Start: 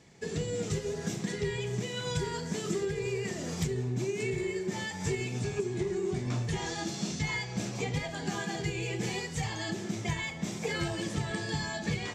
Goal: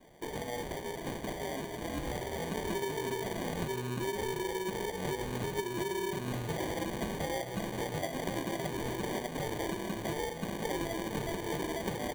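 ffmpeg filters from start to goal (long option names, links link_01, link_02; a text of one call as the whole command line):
ffmpeg -i in.wav -af "asetnsamples=nb_out_samples=441:pad=0,asendcmd='2.39 highpass f 360',highpass=frequency=1500:poles=1,acompressor=threshold=-37dB:ratio=6,acrusher=samples=33:mix=1:aa=0.000001,asuperstop=centerf=5200:order=4:qfactor=7,volume=5.5dB" out.wav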